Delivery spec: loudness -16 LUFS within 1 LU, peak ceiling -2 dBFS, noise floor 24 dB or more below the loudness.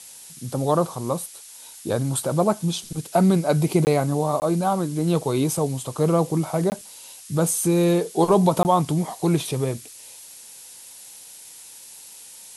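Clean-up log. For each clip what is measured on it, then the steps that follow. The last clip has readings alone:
dropouts 4; longest dropout 19 ms; noise floor -44 dBFS; noise floor target -46 dBFS; loudness -22.0 LUFS; peak level -5.0 dBFS; loudness target -16.0 LUFS
-> interpolate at 3.85/4.40/6.70/8.63 s, 19 ms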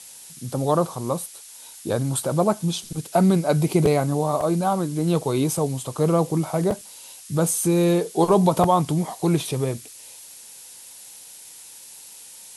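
dropouts 0; noise floor -44 dBFS; noise floor target -46 dBFS
-> noise reduction 6 dB, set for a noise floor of -44 dBFS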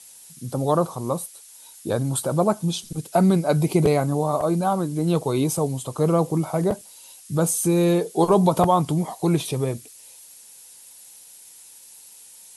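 noise floor -47 dBFS; loudness -22.0 LUFS; peak level -5.0 dBFS; loudness target -16.0 LUFS
-> trim +6 dB; peak limiter -2 dBFS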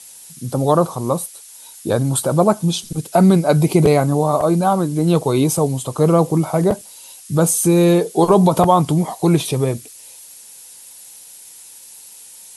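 loudness -16.5 LUFS; peak level -2.0 dBFS; noise floor -41 dBFS

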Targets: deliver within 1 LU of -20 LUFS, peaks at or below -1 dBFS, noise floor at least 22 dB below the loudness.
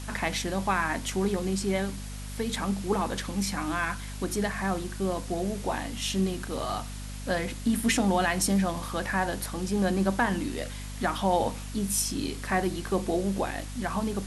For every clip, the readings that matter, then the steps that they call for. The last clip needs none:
hum 50 Hz; highest harmonic 250 Hz; hum level -36 dBFS; noise floor -38 dBFS; noise floor target -51 dBFS; loudness -29.0 LUFS; peak level -11.5 dBFS; loudness target -20.0 LUFS
-> hum notches 50/100/150/200/250 Hz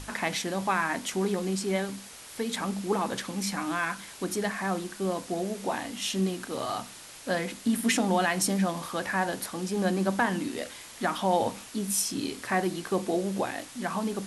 hum not found; noise floor -46 dBFS; noise floor target -52 dBFS
-> noise print and reduce 6 dB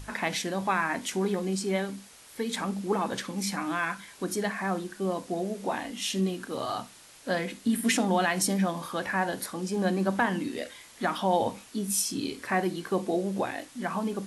noise floor -52 dBFS; loudness -29.5 LUFS; peak level -12.5 dBFS; loudness target -20.0 LUFS
-> trim +9.5 dB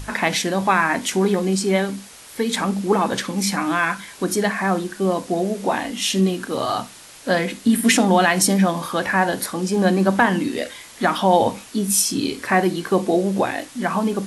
loudness -20.0 LUFS; peak level -3.0 dBFS; noise floor -43 dBFS

